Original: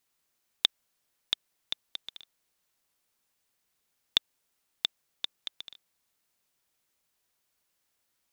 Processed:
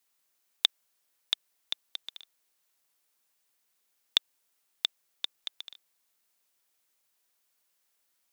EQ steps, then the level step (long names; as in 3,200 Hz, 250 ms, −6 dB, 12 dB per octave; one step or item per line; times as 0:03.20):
high-pass filter 340 Hz 6 dB per octave
high-shelf EQ 8,200 Hz +4 dB
0.0 dB